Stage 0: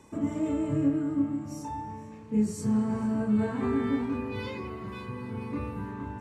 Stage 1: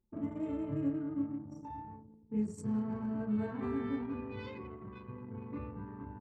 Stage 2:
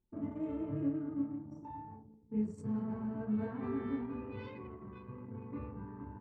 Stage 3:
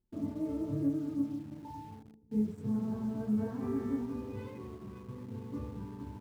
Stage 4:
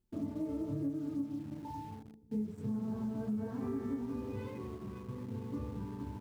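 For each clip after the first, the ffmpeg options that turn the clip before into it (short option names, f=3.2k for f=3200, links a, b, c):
-af "anlmdn=1,volume=-8dB"
-af "lowpass=f=2.5k:p=1,flanger=delay=6.4:depth=9.9:regen=-66:speed=1.1:shape=sinusoidal,volume=3dB"
-filter_complex "[0:a]tiltshelf=f=1.1k:g=5,asplit=2[a][b];[b]acrusher=bits=7:mix=0:aa=0.000001,volume=-11dB[c];[a][c]amix=inputs=2:normalize=0,volume=-3.5dB"
-af "acompressor=threshold=-37dB:ratio=3,volume=2dB"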